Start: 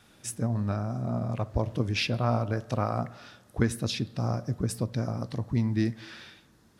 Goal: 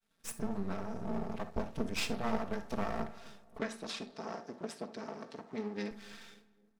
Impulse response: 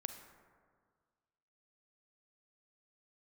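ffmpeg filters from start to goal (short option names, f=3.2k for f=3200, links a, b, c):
-filter_complex "[0:a]agate=range=-33dB:threshold=-49dB:ratio=3:detection=peak,aecho=1:1:4.4:0.85,afreqshift=-13,aeval=exprs='max(val(0),0)':c=same,asettb=1/sr,asplit=3[a][b][c];[a]atrim=end=3.584[d];[b]atrim=start=3.58:end=5.91,asetpts=PTS-STARTPTS,afade=t=in:d=0.004:c=qsin,afade=t=out:st=2.326:d=0.004:c=qsin,highpass=290,lowpass=6.3k[e];[c]atrim=start=5.906[f];[d][e]acrossfade=d=0.004:c1=hsin:c2=qsin[g];[g][f]acrossfade=d=0.004:c1=qsin:c2=hsin,asplit=2[h][i];[i]adelay=266,lowpass=f=1.3k:p=1,volume=-19.5dB,asplit=2[j][k];[k]adelay=266,lowpass=f=1.3k:p=1,volume=0.5,asplit=2[l][m];[m]adelay=266,lowpass=f=1.3k:p=1,volume=0.5,asplit=2[n][o];[o]adelay=266,lowpass=f=1.3k:p=1,volume=0.5[p];[h][j][l][n][p]amix=inputs=5:normalize=0[q];[1:a]atrim=start_sample=2205,atrim=end_sample=3528[r];[q][r]afir=irnorm=-1:irlink=0,volume=-2dB"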